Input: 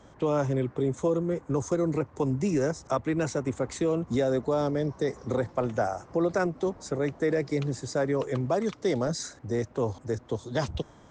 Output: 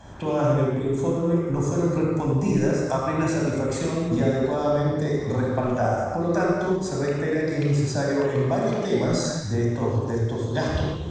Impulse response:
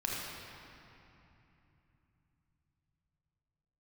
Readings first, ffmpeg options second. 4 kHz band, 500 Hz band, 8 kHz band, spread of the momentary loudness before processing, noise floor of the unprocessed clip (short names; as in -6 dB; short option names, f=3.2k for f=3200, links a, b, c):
+5.5 dB, +3.5 dB, +4.5 dB, 5 LU, -54 dBFS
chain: -filter_complex "[0:a]acompressor=threshold=-41dB:ratio=1.5[a];[1:a]atrim=start_sample=2205,afade=t=out:st=0.38:d=0.01,atrim=end_sample=17199[b];[a][b]afir=irnorm=-1:irlink=0,volume=7dB"